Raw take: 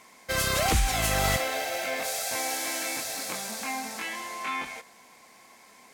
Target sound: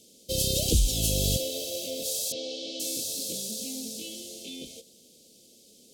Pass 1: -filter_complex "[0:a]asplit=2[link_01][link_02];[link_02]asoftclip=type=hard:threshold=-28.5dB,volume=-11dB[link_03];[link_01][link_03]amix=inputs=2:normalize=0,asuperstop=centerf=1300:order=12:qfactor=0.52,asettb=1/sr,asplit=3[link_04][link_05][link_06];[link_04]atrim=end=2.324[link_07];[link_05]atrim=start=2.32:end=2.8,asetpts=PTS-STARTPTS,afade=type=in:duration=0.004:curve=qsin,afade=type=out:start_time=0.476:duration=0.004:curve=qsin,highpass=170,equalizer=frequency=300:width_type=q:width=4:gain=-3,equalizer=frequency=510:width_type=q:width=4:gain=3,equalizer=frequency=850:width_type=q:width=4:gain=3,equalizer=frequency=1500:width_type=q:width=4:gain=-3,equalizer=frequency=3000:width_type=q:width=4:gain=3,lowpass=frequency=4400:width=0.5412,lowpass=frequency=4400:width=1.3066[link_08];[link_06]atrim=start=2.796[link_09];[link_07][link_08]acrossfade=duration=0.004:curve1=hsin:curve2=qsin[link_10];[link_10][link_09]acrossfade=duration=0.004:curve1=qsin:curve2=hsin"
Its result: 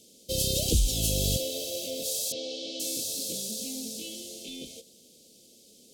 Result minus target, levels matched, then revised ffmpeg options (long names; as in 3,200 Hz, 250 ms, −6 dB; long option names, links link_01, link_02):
hard clipping: distortion +18 dB
-filter_complex "[0:a]asplit=2[link_01][link_02];[link_02]asoftclip=type=hard:threshold=-18dB,volume=-11dB[link_03];[link_01][link_03]amix=inputs=2:normalize=0,asuperstop=centerf=1300:order=12:qfactor=0.52,asettb=1/sr,asplit=3[link_04][link_05][link_06];[link_04]atrim=end=2.324[link_07];[link_05]atrim=start=2.32:end=2.8,asetpts=PTS-STARTPTS,afade=type=in:duration=0.004:curve=qsin,afade=type=out:start_time=0.476:duration=0.004:curve=qsin,highpass=170,equalizer=frequency=300:width_type=q:width=4:gain=-3,equalizer=frequency=510:width_type=q:width=4:gain=3,equalizer=frequency=850:width_type=q:width=4:gain=3,equalizer=frequency=1500:width_type=q:width=4:gain=-3,equalizer=frequency=3000:width_type=q:width=4:gain=3,lowpass=frequency=4400:width=0.5412,lowpass=frequency=4400:width=1.3066[link_08];[link_06]atrim=start=2.796[link_09];[link_07][link_08]acrossfade=duration=0.004:curve1=hsin:curve2=qsin[link_10];[link_10][link_09]acrossfade=duration=0.004:curve1=qsin:curve2=hsin"